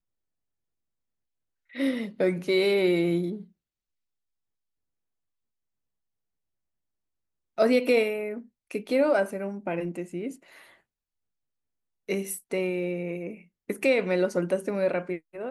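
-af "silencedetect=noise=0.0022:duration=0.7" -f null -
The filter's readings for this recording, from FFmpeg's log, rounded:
silence_start: 0.00
silence_end: 1.70 | silence_duration: 1.70
silence_start: 3.49
silence_end: 7.58 | silence_duration: 4.09
silence_start: 10.79
silence_end: 12.09 | silence_duration: 1.30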